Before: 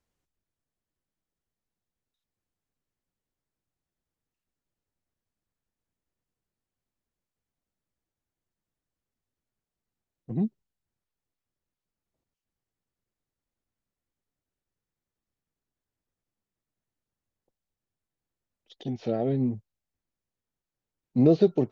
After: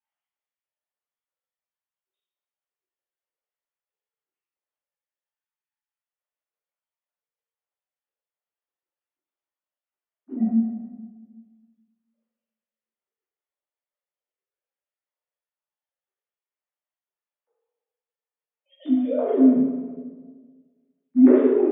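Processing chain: sine-wave speech; limiter -18.5 dBFS, peak gain reduction 10.5 dB; reverb RT60 1.5 s, pre-delay 3 ms, DRR -11.5 dB; gain -4 dB

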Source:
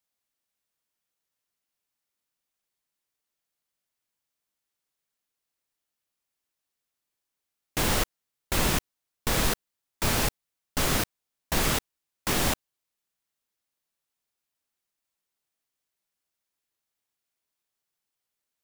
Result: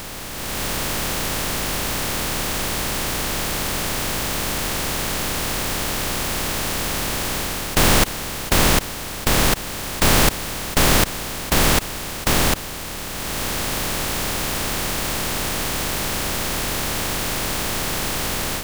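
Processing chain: per-bin compression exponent 0.2; AGC gain up to 9.5 dB; gain -1 dB

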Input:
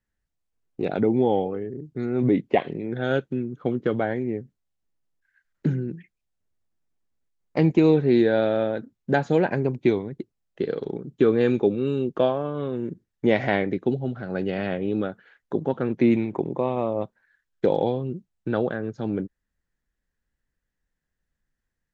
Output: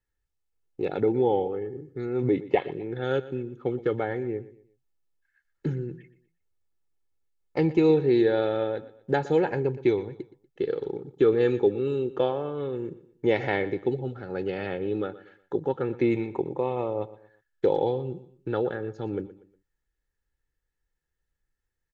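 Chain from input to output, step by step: comb 2.3 ms, depth 56%; on a send: feedback echo 0.12 s, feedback 35%, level -17 dB; on the sum: gain -4 dB

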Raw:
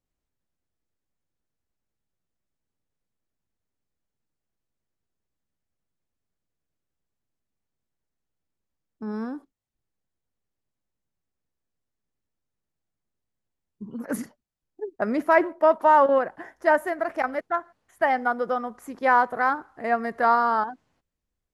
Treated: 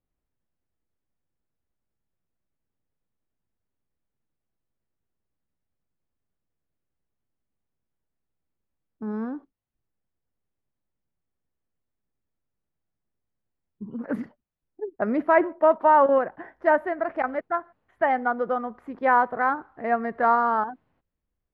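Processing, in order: air absorption 410 m; gain +1.5 dB

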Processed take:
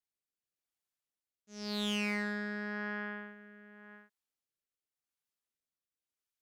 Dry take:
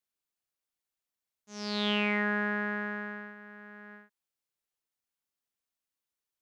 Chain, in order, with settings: tube stage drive 27 dB, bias 0.5; rotary speaker horn 0.9 Hz; hard clip -27 dBFS, distortion -18 dB

